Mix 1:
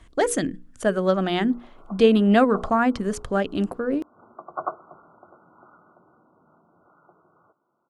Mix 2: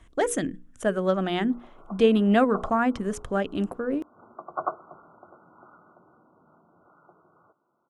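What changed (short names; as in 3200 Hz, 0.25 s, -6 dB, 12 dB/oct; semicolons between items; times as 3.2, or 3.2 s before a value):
speech -3.0 dB; master: add bell 4500 Hz -9 dB 0.26 oct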